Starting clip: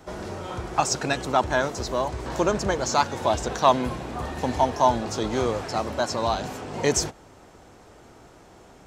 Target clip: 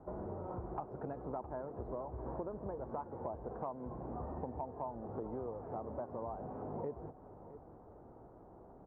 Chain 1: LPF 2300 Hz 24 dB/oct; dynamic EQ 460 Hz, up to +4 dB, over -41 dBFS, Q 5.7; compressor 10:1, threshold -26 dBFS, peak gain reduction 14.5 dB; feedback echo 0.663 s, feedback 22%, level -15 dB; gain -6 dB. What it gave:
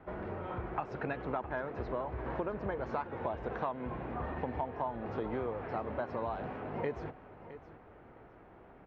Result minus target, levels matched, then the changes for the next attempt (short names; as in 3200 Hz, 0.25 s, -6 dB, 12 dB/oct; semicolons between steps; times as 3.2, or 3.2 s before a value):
2000 Hz band +15.0 dB; compressor: peak gain reduction -4.5 dB
change: LPF 1000 Hz 24 dB/oct; change: compressor 10:1, threshold -32.5 dBFS, peak gain reduction 19 dB